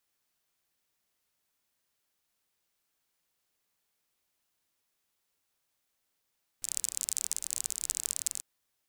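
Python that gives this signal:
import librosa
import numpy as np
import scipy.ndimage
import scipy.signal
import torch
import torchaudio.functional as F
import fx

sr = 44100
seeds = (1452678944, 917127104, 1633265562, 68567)

y = fx.rain(sr, seeds[0], length_s=1.79, drops_per_s=36.0, hz=7700.0, bed_db=-24.5)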